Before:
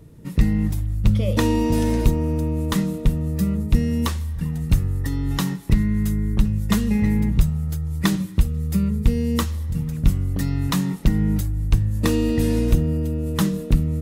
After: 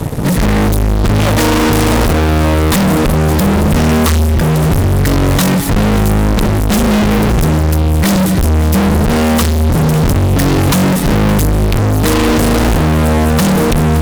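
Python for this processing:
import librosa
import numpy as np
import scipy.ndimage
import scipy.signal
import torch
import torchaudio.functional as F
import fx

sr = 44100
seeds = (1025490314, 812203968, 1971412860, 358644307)

y = fx.fuzz(x, sr, gain_db=44.0, gate_db=-48.0)
y = y + 10.0 ** (-15.0 / 20.0) * np.pad(y, (int(567 * sr / 1000.0), 0))[:len(y)]
y = y * librosa.db_to_amplitude(3.5)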